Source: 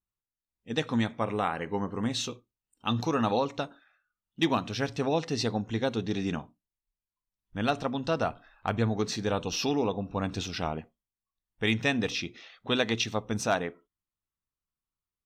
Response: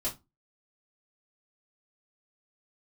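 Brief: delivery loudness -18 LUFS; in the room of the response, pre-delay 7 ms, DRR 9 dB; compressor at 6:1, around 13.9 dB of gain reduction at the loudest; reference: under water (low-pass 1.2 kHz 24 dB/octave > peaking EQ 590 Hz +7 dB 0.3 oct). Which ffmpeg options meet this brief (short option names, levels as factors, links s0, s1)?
-filter_complex "[0:a]acompressor=threshold=0.0141:ratio=6,asplit=2[s0][s1];[1:a]atrim=start_sample=2205,adelay=7[s2];[s1][s2]afir=irnorm=-1:irlink=0,volume=0.237[s3];[s0][s3]amix=inputs=2:normalize=0,lowpass=f=1200:w=0.5412,lowpass=f=1200:w=1.3066,equalizer=f=590:t=o:w=0.3:g=7,volume=14.1"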